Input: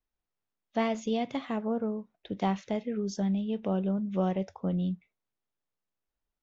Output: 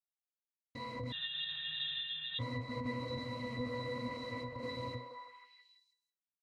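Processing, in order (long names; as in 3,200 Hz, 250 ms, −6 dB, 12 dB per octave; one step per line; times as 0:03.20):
compressing power law on the bin magnitudes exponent 0.21
mains-hum notches 50/100 Hz
comparator with hysteresis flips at −38 dBFS
echo through a band-pass that steps 164 ms, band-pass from 540 Hz, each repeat 0.7 octaves, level −2.5 dB
asymmetric clip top −34 dBFS
delay with pitch and tempo change per echo 464 ms, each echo +2 semitones, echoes 2, each echo −6 dB
resonances in every octave B, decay 0.25 s
0:01.12–0:02.39: voice inversion scrambler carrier 3,800 Hz
level +9.5 dB
Ogg Vorbis 48 kbit/s 32,000 Hz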